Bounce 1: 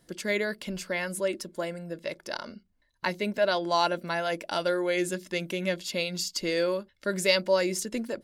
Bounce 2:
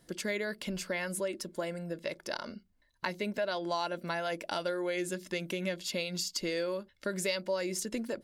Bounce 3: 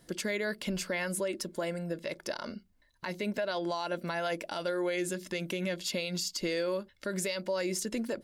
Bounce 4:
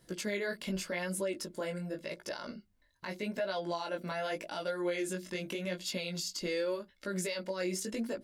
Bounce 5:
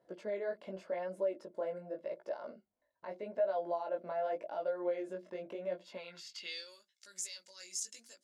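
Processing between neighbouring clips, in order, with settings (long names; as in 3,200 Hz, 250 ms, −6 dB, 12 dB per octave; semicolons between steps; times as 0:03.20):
downward compressor 3 to 1, threshold −32 dBFS, peak gain reduction 10.5 dB
brickwall limiter −26.5 dBFS, peak gain reduction 9.5 dB; level +3 dB
chorus effect 0.85 Hz, delay 15.5 ms, depth 6.7 ms
band-pass filter sweep 630 Hz → 6,700 Hz, 0:05.84–0:06.75; level +3.5 dB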